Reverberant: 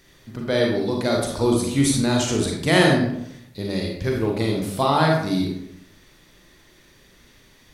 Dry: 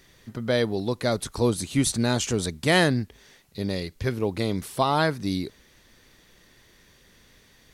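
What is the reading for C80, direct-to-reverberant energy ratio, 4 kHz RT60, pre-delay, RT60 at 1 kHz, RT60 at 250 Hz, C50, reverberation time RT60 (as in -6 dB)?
6.0 dB, -1.0 dB, 0.50 s, 34 ms, 0.75 s, 0.85 s, 2.5 dB, 0.75 s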